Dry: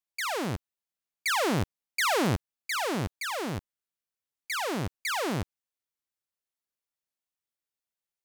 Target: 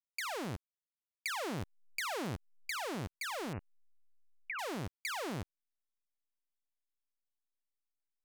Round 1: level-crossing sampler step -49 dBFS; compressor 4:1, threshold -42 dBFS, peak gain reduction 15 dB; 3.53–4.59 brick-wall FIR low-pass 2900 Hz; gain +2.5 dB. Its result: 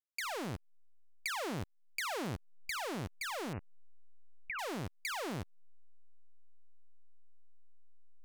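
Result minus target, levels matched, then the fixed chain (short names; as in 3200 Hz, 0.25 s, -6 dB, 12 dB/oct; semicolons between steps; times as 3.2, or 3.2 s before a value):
level-crossing sampler: distortion +13 dB
level-crossing sampler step -56 dBFS; compressor 4:1, threshold -42 dBFS, peak gain reduction 15 dB; 3.53–4.59 brick-wall FIR low-pass 2900 Hz; gain +2.5 dB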